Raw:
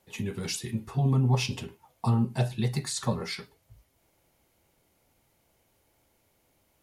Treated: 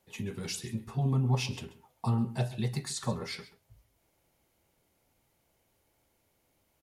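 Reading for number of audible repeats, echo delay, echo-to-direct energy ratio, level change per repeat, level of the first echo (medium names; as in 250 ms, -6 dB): 1, 134 ms, -17.0 dB, no regular repeats, -17.0 dB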